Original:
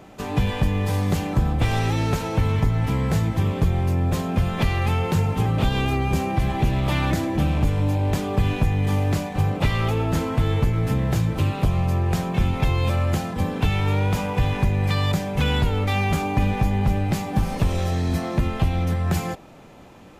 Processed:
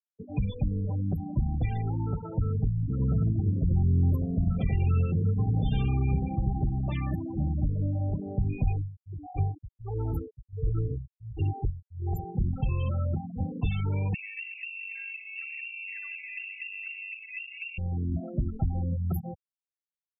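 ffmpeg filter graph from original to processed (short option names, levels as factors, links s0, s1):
-filter_complex "[0:a]asettb=1/sr,asplit=3[s0][s1][s2];[s0]atrim=end=2.904[s3];[s1]atrim=start=2.9:end=6.66,asetpts=PTS-STARTPTS,afade=t=in:d=0.004:c=qsin,afade=t=out:st=3.756:d=0.004:c=qsin,asuperstop=centerf=890:order=20:qfactor=5.6,asplit=2[s4][s5];[s5]adelay=91,lowpass=f=1500:p=1,volume=0.668,asplit=2[s6][s7];[s7]adelay=91,lowpass=f=1500:p=1,volume=0.31,asplit=2[s8][s9];[s9]adelay=91,lowpass=f=1500:p=1,volume=0.31,asplit=2[s10][s11];[s11]adelay=91,lowpass=f=1500:p=1,volume=0.31[s12];[s4][s6][s8][s10][s12]amix=inputs=5:normalize=0,atrim=end_sample=165816[s13];[s2]atrim=start=6.656[s14];[s3][s13]acrossfade=d=0.004:c1=hsin:c2=qsin[s15];[s15][s14]acrossfade=d=0.004:c1=qsin:c2=hsin,asettb=1/sr,asplit=3[s16][s17][s18];[s16]atrim=end=8.654[s19];[s17]atrim=start=8.65:end=12.35,asetpts=PTS-STARTPTS,afade=t=in:d=0.004:c=qsin,afade=t=out:st=3.696:d=0.004:c=qsin,aecho=1:1:2.5:0.73,atrim=end_sample=163170,tremolo=f=1.4:d=0.93[s20];[s18]atrim=start=12.346[s21];[s19][s20]acrossfade=d=0.004:c1=hsin:c2=qsin[s22];[s22][s21]acrossfade=d=0.004:c1=qsin:c2=hsin,asettb=1/sr,asplit=3[s23][s24][s25];[s23]atrim=end=14.144[s26];[s24]atrim=start=14.14:end=17.78,asetpts=PTS-STARTPTS,afade=t=in:d=0.004:c=qsin,afade=t=out:st=3.636:d=0.004:c=qsin,acrusher=samples=22:mix=1:aa=0.000001:lfo=1:lforange=22:lforate=3,lowpass=f=2400:t=q:w=0.5098,lowpass=f=2400:t=q:w=0.6013,lowpass=f=2400:t=q:w=0.9,lowpass=f=2400:t=q:w=2.563,afreqshift=-2800[s27];[s25]atrim=start=17.776[s28];[s26][s27]acrossfade=d=0.004:c1=hsin:c2=qsin[s29];[s29][s28]acrossfade=d=0.004:c1=qsin:c2=hsin,aemphasis=mode=production:type=50fm,afftfilt=real='re*gte(hypot(re,im),0.158)':imag='im*gte(hypot(re,im),0.158)':win_size=1024:overlap=0.75,acrossover=split=250[s30][s31];[s31]acompressor=threshold=0.0251:ratio=6[s32];[s30][s32]amix=inputs=2:normalize=0,volume=0.501"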